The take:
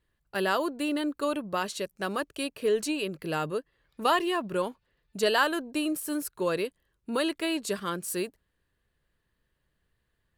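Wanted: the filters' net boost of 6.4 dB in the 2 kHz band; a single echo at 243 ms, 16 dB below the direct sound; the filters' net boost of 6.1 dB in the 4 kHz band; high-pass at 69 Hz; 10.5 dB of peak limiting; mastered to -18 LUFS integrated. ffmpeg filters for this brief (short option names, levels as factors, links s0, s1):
-af "highpass=69,equalizer=f=2000:t=o:g=7.5,equalizer=f=4000:t=o:g=5,alimiter=limit=0.141:level=0:latency=1,aecho=1:1:243:0.158,volume=3.55"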